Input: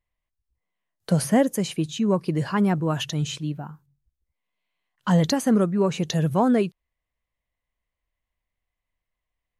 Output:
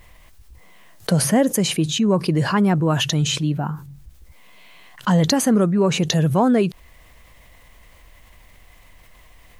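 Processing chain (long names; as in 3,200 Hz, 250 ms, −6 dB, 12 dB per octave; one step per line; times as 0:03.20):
envelope flattener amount 50%
level +1.5 dB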